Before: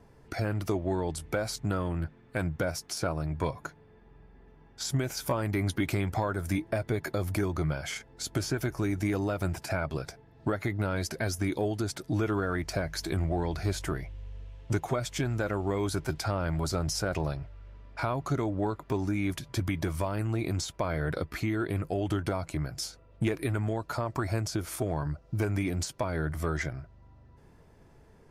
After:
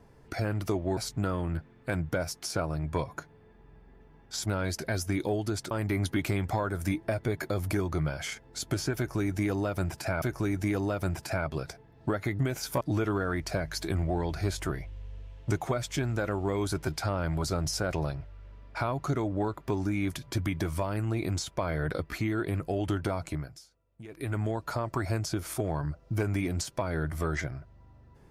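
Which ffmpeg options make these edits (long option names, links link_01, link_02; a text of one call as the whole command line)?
ffmpeg -i in.wav -filter_complex "[0:a]asplit=9[link_01][link_02][link_03][link_04][link_05][link_06][link_07][link_08][link_09];[link_01]atrim=end=0.972[link_10];[link_02]atrim=start=1.438:end=4.932[link_11];[link_03]atrim=start=10.778:end=12.032[link_12];[link_04]atrim=start=5.348:end=9.862[link_13];[link_05]atrim=start=8.608:end=10.782[link_14];[link_06]atrim=start=4.928:end=5.352[link_15];[link_07]atrim=start=12.028:end=22.83,asetpts=PTS-STARTPTS,afade=type=out:start_time=10.482:duration=0.32:silence=0.11885[link_16];[link_08]atrim=start=22.83:end=23.29,asetpts=PTS-STARTPTS,volume=-18.5dB[link_17];[link_09]atrim=start=23.29,asetpts=PTS-STARTPTS,afade=type=in:duration=0.32:silence=0.11885[link_18];[link_10][link_11]acrossfade=duration=0.004:curve1=hsin:curve2=hsin[link_19];[link_19][link_12]acrossfade=duration=0.004:curve1=hsin:curve2=hsin[link_20];[link_20][link_13]acrossfade=duration=0.004:curve1=hsin:curve2=hsin[link_21];[link_21][link_14]acrossfade=duration=0.004:curve1=hsin:curve2=hsin[link_22];[link_22][link_15]acrossfade=duration=0.004:curve1=hsin:curve2=hsin[link_23];[link_16][link_17][link_18]concat=n=3:v=0:a=1[link_24];[link_23][link_24]acrossfade=duration=0.004:curve1=hsin:curve2=hsin" out.wav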